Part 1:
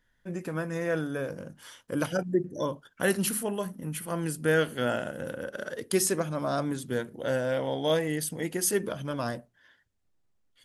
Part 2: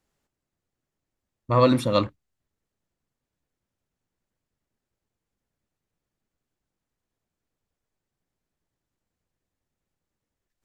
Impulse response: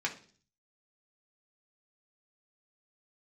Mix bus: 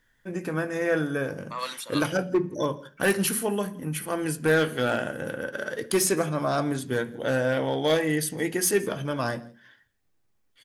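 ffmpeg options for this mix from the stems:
-filter_complex "[0:a]asoftclip=type=hard:threshold=-20dB,volume=0.5dB,asplit=3[a][b][c];[b]volume=-6dB[d];[c]volume=-20.5dB[e];[1:a]highpass=1.1k,aemphasis=mode=production:type=50kf,acontrast=33,volume=-12.5dB[f];[2:a]atrim=start_sample=2205[g];[d][g]afir=irnorm=-1:irlink=0[h];[e]aecho=0:1:167:1[i];[a][f][h][i]amix=inputs=4:normalize=0"

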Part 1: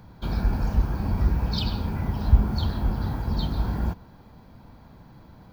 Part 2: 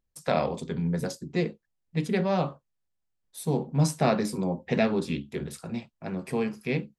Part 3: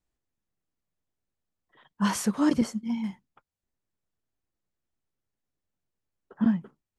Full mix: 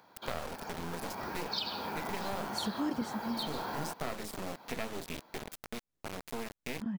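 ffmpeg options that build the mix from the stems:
-filter_complex "[0:a]highpass=520,dynaudnorm=f=290:g=9:m=12dB,volume=-3.5dB[a];[1:a]highpass=f=340:p=1,acrusher=bits=3:dc=4:mix=0:aa=0.000001,volume=1dB,asplit=2[b][c];[2:a]adelay=400,volume=1.5dB[d];[c]apad=whole_len=325466[e];[d][e]sidechaincompress=threshold=-44dB:ratio=5:attack=16:release=194[f];[a][b][f]amix=inputs=3:normalize=0,acompressor=threshold=-37dB:ratio=2.5"

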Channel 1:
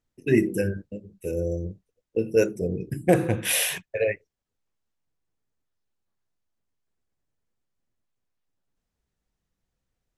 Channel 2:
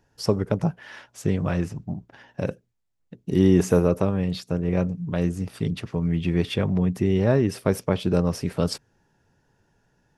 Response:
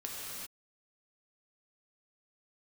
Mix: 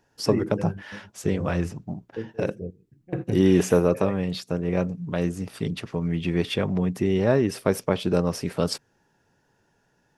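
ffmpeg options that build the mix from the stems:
-filter_complex "[0:a]lowpass=2.8k,lowshelf=f=350:g=10,volume=-12.5dB[a];[1:a]lowshelf=f=130:g=-10.5,volume=1.5dB,asplit=2[b][c];[c]apad=whole_len=448937[d];[a][d]sidechaingate=range=-21dB:threshold=-50dB:ratio=16:detection=peak[e];[e][b]amix=inputs=2:normalize=0"

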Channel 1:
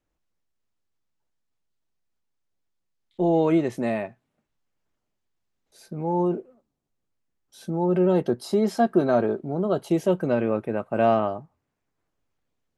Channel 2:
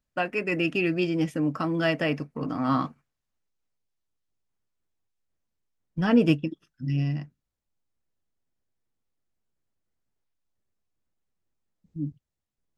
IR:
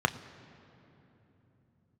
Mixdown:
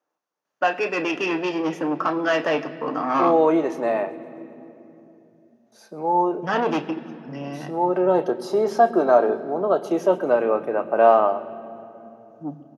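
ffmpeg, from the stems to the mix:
-filter_complex "[0:a]volume=-1dB,asplit=3[a][b][c];[b]volume=-6.5dB[d];[c]volume=-20dB[e];[1:a]asoftclip=type=tanh:threshold=-23.5dB,adelay=450,volume=1.5dB,asplit=2[f][g];[g]volume=-3.5dB[h];[2:a]atrim=start_sample=2205[i];[d][h]amix=inputs=2:normalize=0[j];[j][i]afir=irnorm=-1:irlink=0[k];[e]aecho=0:1:130|260|390|520|650|780|910|1040|1170:1|0.58|0.336|0.195|0.113|0.0656|0.0381|0.0221|0.0128[l];[a][f][k][l]amix=inputs=4:normalize=0,highpass=430"

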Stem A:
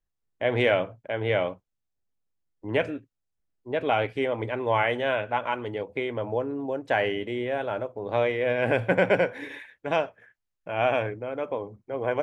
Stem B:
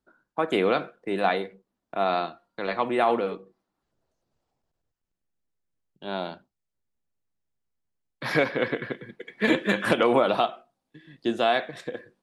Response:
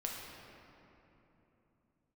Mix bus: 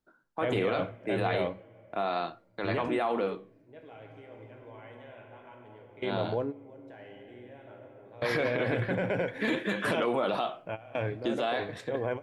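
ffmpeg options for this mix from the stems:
-filter_complex "[0:a]lowshelf=f=220:g=7,alimiter=limit=-17dB:level=0:latency=1:release=17,volume=-4.5dB,asplit=2[a][b];[b]volume=-19.5dB[c];[1:a]flanger=delay=6.4:depth=9.7:regen=-75:speed=0.41:shape=sinusoidal,volume=2dB,asplit=2[d][e];[e]apad=whole_len=539161[f];[a][f]sidechaingate=range=-33dB:threshold=-58dB:ratio=16:detection=peak[g];[2:a]atrim=start_sample=2205[h];[c][h]afir=irnorm=-1:irlink=0[i];[g][d][i]amix=inputs=3:normalize=0,alimiter=limit=-19.5dB:level=0:latency=1:release=32"

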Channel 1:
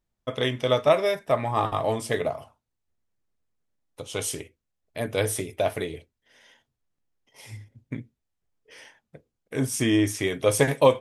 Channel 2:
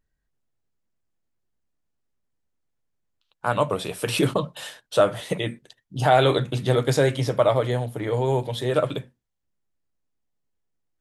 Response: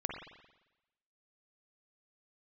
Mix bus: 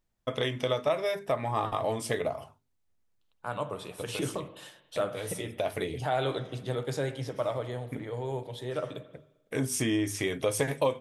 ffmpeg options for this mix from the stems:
-filter_complex "[0:a]bandreject=f=50:t=h:w=6,bandreject=f=100:t=h:w=6,bandreject=f=150:t=h:w=6,bandreject=f=200:t=h:w=6,bandreject=f=250:t=h:w=6,bandreject=f=300:t=h:w=6,bandreject=f=350:t=h:w=6,bandreject=f=400:t=h:w=6,acompressor=threshold=-29dB:ratio=2.5,volume=1dB[a];[1:a]volume=-14.5dB,asplit=3[b][c][d];[c]volume=-8dB[e];[d]apad=whole_len=485411[f];[a][f]sidechaincompress=threshold=-44dB:ratio=4:attack=16:release=317[g];[2:a]atrim=start_sample=2205[h];[e][h]afir=irnorm=-1:irlink=0[i];[g][b][i]amix=inputs=3:normalize=0"

